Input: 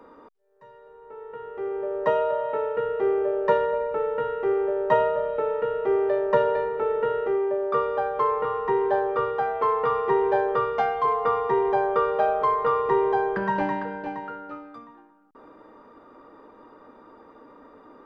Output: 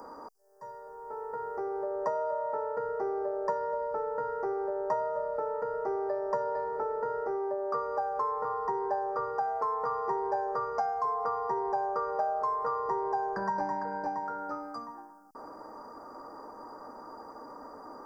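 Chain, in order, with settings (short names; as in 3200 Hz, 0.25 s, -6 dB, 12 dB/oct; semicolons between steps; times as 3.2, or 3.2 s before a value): EQ curve 450 Hz 0 dB, 790 Hz +9 dB, 1700 Hz 0 dB, 3400 Hz -29 dB, 4800 Hz +15 dB; compressor 3:1, threshold -33 dBFS, peak gain reduction 17 dB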